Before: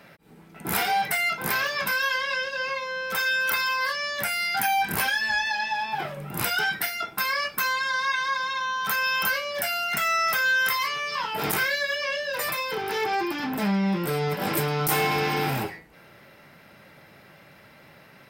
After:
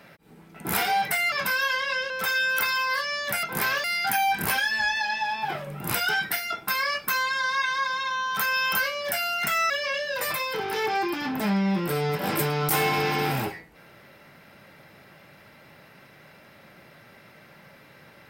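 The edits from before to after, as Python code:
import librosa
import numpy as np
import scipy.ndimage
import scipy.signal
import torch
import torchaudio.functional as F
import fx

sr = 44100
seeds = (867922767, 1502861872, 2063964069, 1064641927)

y = fx.edit(x, sr, fx.move(start_s=1.32, length_s=0.41, to_s=4.34),
    fx.cut(start_s=2.51, length_s=0.5),
    fx.cut(start_s=10.2, length_s=1.68), tone=tone)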